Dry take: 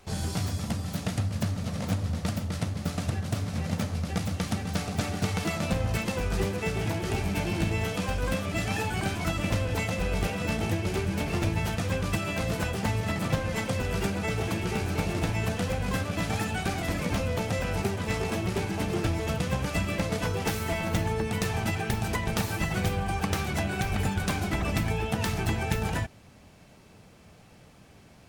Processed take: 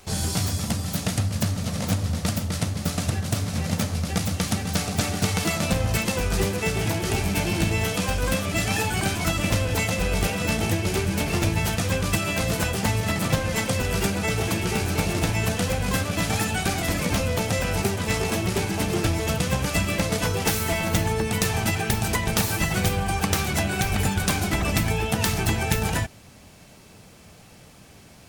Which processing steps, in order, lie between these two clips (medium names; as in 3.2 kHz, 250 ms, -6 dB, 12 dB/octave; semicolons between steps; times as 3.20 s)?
treble shelf 4.2 kHz +8.5 dB; trim +4 dB